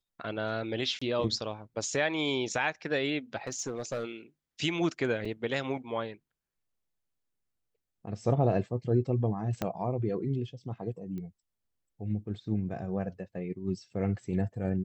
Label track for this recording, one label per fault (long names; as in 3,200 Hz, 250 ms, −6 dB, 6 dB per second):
0.990000	1.010000	drop-out 25 ms
3.470000	4.050000	clipping −28.5 dBFS
5.250000	5.250000	drop-out 4.5 ms
9.620000	9.620000	click −16 dBFS
11.180000	11.180000	click −30 dBFS